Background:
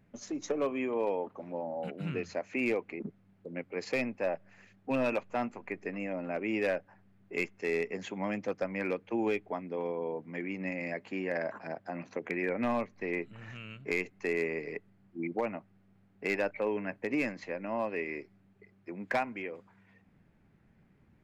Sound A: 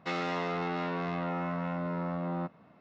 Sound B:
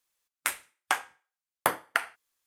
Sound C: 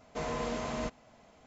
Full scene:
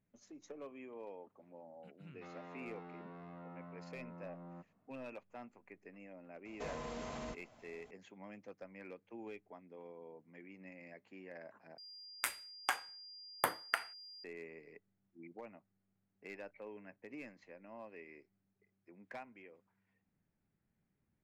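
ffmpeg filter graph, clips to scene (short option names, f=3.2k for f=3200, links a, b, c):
-filter_complex "[0:a]volume=-18dB[a];[1:a]lowpass=f=1.3k:p=1[b];[3:a]acompressor=threshold=-36dB:ratio=6:attack=3.2:release=140:knee=1:detection=peak[c];[2:a]aeval=exprs='val(0)+0.00708*sin(2*PI*4800*n/s)':c=same[d];[a]asplit=2[e][f];[e]atrim=end=11.784[g];[d]atrim=end=2.46,asetpts=PTS-STARTPTS,volume=-8dB[h];[f]atrim=start=14.236[i];[b]atrim=end=2.8,asetpts=PTS-STARTPTS,volume=-17.5dB,afade=t=in:d=0.1,afade=t=out:st=2.7:d=0.1,adelay=2150[j];[c]atrim=end=1.46,asetpts=PTS-STARTPTS,volume=-4dB,afade=t=in:d=0.004:c=hsin,afade=t=out:st=1.456:d=0.004:c=hsin,adelay=6450[k];[g][h]acrossfade=d=0.004:c1=hsin:c2=hsin[l];[l][i]acrossfade=d=0.004:c1=hsin:c2=hsin[m];[m][j][k]amix=inputs=3:normalize=0"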